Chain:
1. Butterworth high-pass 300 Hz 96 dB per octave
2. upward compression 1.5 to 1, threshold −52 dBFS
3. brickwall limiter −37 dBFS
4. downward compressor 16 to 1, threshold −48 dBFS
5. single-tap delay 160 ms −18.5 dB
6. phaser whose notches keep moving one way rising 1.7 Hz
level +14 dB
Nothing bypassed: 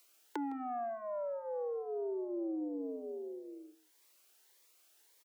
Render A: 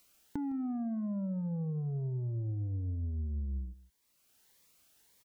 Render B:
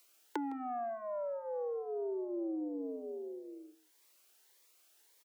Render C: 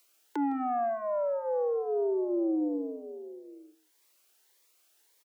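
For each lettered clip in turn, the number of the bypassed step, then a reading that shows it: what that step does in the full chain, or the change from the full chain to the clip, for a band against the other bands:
1, change in crest factor −2.5 dB
3, average gain reduction 2.0 dB
4, average gain reduction 6.5 dB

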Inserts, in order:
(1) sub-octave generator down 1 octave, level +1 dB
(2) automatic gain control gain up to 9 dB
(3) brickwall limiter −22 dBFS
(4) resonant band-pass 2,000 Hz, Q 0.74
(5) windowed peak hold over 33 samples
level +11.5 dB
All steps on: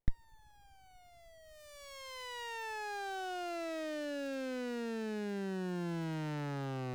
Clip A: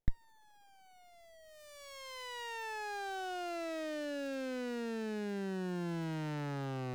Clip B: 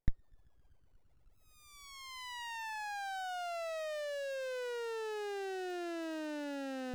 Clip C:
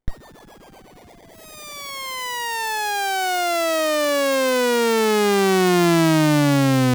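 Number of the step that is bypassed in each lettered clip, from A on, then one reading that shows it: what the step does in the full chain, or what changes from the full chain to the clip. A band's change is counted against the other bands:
2, change in momentary loudness spread −2 LU
1, 250 Hz band −5.5 dB
4, 8 kHz band +5.5 dB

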